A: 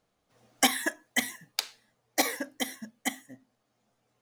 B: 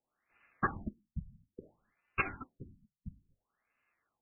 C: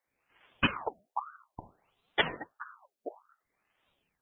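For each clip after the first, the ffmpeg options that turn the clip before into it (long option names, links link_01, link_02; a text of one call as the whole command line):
ffmpeg -i in.wav -af "lowpass=frequency=6800:width=0.5412,lowpass=frequency=6800:width=1.3066,aeval=exprs='val(0)*sin(2*PI*1900*n/s)':channel_layout=same,afftfilt=real='re*lt(b*sr/1024,210*pow(3000/210,0.5+0.5*sin(2*PI*0.59*pts/sr)))':imag='im*lt(b*sr/1024,210*pow(3000/210,0.5+0.5*sin(2*PI*0.59*pts/sr)))':win_size=1024:overlap=0.75,volume=-1.5dB" out.wav
ffmpeg -i in.wav -af "aeval=exprs='val(0)*sin(2*PI*880*n/s+880*0.55/1.5*sin(2*PI*1.5*n/s))':channel_layout=same,volume=7.5dB" out.wav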